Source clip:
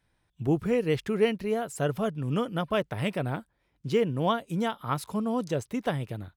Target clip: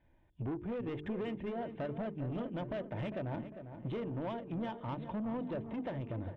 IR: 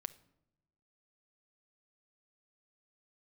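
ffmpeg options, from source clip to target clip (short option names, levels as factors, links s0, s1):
-filter_complex "[0:a]equalizer=f=1300:t=o:w=0.36:g=-12.5,bandreject=f=50:t=h:w=6,bandreject=f=100:t=h:w=6,bandreject=f=150:t=h:w=6,bandreject=f=200:t=h:w=6,bandreject=f=250:t=h:w=6,bandreject=f=300:t=h:w=6,bandreject=f=350:t=h:w=6,bandreject=f=400:t=h:w=6,bandreject=f=450:t=h:w=6,aecho=1:1:3.3:0.36,acompressor=threshold=0.0158:ratio=6,aresample=8000,asoftclip=type=tanh:threshold=0.0119,aresample=44100,adynamicsmooth=sensitivity=4:basefreq=2000,asplit=2[s0][s1];[s1]adelay=401,lowpass=f=2000:p=1,volume=0.316,asplit=2[s2][s3];[s3]adelay=401,lowpass=f=2000:p=1,volume=0.49,asplit=2[s4][s5];[s5]adelay=401,lowpass=f=2000:p=1,volume=0.49,asplit=2[s6][s7];[s7]adelay=401,lowpass=f=2000:p=1,volume=0.49,asplit=2[s8][s9];[s9]adelay=401,lowpass=f=2000:p=1,volume=0.49[s10];[s2][s4][s6][s8][s10]amix=inputs=5:normalize=0[s11];[s0][s11]amix=inputs=2:normalize=0,volume=1.78"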